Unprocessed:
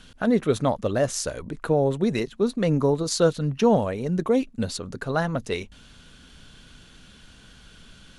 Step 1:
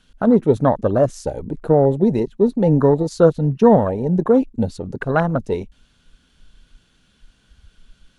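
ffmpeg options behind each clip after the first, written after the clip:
-af "afwtdn=0.0355,volume=2.24"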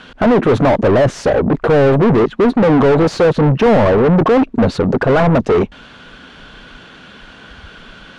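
-filter_complex "[0:a]asplit=2[s0][s1];[s1]highpass=f=720:p=1,volume=100,asoftclip=type=tanh:threshold=0.891[s2];[s0][s2]amix=inputs=2:normalize=0,lowpass=f=1400:p=1,volume=0.501,aemphasis=mode=reproduction:type=50fm,volume=0.708"

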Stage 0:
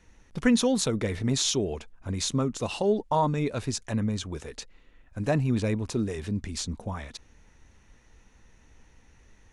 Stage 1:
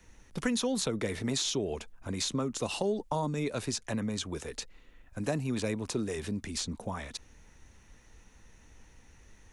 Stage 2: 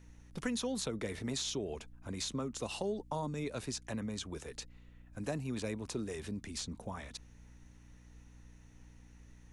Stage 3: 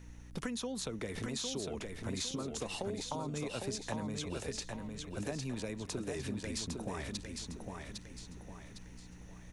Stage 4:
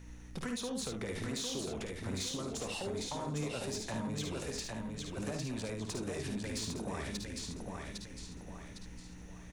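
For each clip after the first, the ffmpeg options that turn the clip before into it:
-filter_complex "[0:a]acrossover=split=170|450|4700[s0][s1][s2][s3];[s0]acompressor=threshold=0.00708:ratio=4[s4];[s1]acompressor=threshold=0.0224:ratio=4[s5];[s2]acompressor=threshold=0.02:ratio=4[s6];[s3]acompressor=threshold=0.00794:ratio=4[s7];[s4][s5][s6][s7]amix=inputs=4:normalize=0,highshelf=f=8300:g=9"
-af "aeval=exprs='val(0)+0.00316*(sin(2*PI*60*n/s)+sin(2*PI*2*60*n/s)/2+sin(2*PI*3*60*n/s)/3+sin(2*PI*4*60*n/s)/4+sin(2*PI*5*60*n/s)/5)':c=same,volume=0.501"
-filter_complex "[0:a]acompressor=threshold=0.00891:ratio=6,asplit=2[s0][s1];[s1]aecho=0:1:806|1612|2418|3224|4030:0.596|0.238|0.0953|0.0381|0.0152[s2];[s0][s2]amix=inputs=2:normalize=0,volume=1.78"
-af "asoftclip=type=tanh:threshold=0.0224,aecho=1:1:54|73:0.447|0.447,volume=1.12"

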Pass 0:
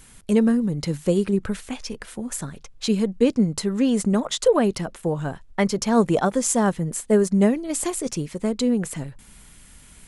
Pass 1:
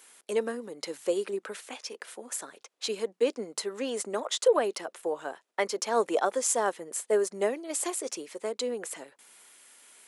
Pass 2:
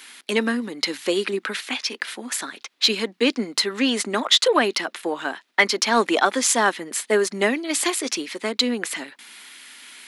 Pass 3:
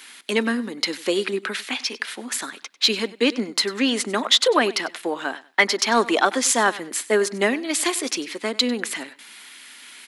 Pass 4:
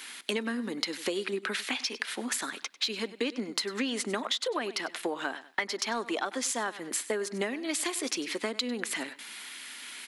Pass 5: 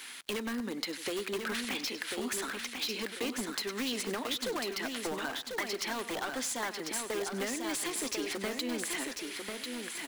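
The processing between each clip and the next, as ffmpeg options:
-af "highpass=f=380:w=0.5412,highpass=f=380:w=1.3066,volume=0.631"
-filter_complex "[0:a]equalizer=f=125:t=o:w=1:g=-5,equalizer=f=250:t=o:w=1:g=8,equalizer=f=500:t=o:w=1:g=-10,equalizer=f=2000:t=o:w=1:g=6,equalizer=f=4000:t=o:w=1:g=8,equalizer=f=8000:t=o:w=1:g=-6,asplit=2[s0][s1];[s1]asoftclip=type=tanh:threshold=0.0841,volume=0.422[s2];[s0][s2]amix=inputs=2:normalize=0,volume=2.37"
-af "aecho=1:1:97|194:0.112|0.0258"
-af "acompressor=threshold=0.0398:ratio=12"
-filter_complex "[0:a]asplit=2[s0][s1];[s1]aeval=exprs='(mod(21.1*val(0)+1,2)-1)/21.1':c=same,volume=0.596[s2];[s0][s2]amix=inputs=2:normalize=0,acrusher=bits=7:mix=0:aa=0.5,aecho=1:1:1045|2090|3135|4180:0.562|0.157|0.0441|0.0123,volume=0.501"

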